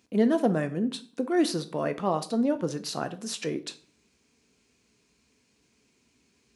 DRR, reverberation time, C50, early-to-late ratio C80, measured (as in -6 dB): 9.0 dB, 0.45 s, 16.0 dB, 20.5 dB